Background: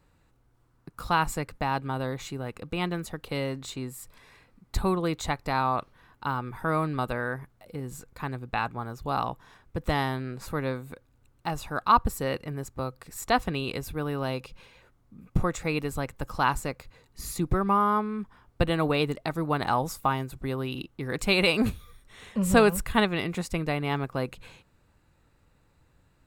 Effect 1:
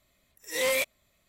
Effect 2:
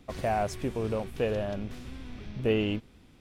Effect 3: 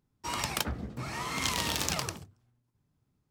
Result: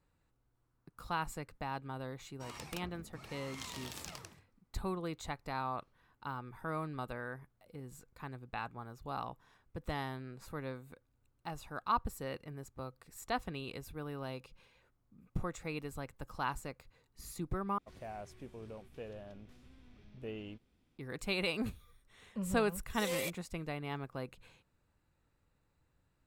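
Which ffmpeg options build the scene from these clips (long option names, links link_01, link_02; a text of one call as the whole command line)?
ffmpeg -i bed.wav -i cue0.wav -i cue1.wav -i cue2.wav -filter_complex "[0:a]volume=-12dB[link_01];[1:a]equalizer=frequency=1800:width=1.5:gain=-6.5[link_02];[link_01]asplit=2[link_03][link_04];[link_03]atrim=end=17.784[link_05];[2:a]atrim=end=3.2,asetpts=PTS-STARTPTS,volume=-17.5dB[link_06];[link_04]atrim=start=20.976[link_07];[3:a]atrim=end=3.3,asetpts=PTS-STARTPTS,volume=-15.5dB,afade=type=in:duration=0.004:curve=hsin,afade=type=out:start_time=3.296:duration=0.004:curve=hsin,adelay=2160[link_08];[link_02]atrim=end=1.28,asetpts=PTS-STARTPTS,volume=-10dB,afade=type=in:duration=0.004:curve=hsin,afade=type=out:start_time=1.276:duration=0.004:curve=hsin,adelay=22460[link_09];[link_05][link_06]acrossfade=duration=0.004:curve1=hsin:curve2=hsin[link_10];[link_10][link_07]acrossfade=duration=0.004:curve1=hsin:curve2=hsin[link_11];[link_11][link_08][link_09]amix=inputs=3:normalize=0" out.wav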